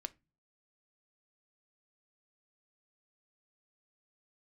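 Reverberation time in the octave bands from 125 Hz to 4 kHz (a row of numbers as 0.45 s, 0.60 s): 0.55 s, 0.50 s, 0.25 s, 0.25 s, 0.25 s, 0.20 s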